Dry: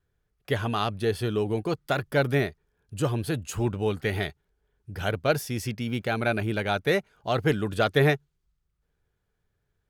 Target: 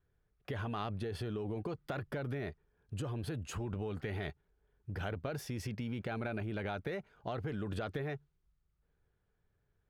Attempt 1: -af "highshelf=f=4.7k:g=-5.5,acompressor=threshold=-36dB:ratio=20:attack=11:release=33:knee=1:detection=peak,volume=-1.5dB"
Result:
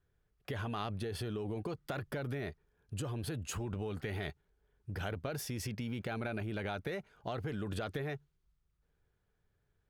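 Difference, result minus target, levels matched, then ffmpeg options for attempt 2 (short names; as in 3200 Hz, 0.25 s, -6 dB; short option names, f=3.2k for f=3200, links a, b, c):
8000 Hz band +6.0 dB
-af "highshelf=f=4.7k:g=-14.5,acompressor=threshold=-36dB:ratio=20:attack=11:release=33:knee=1:detection=peak,volume=-1.5dB"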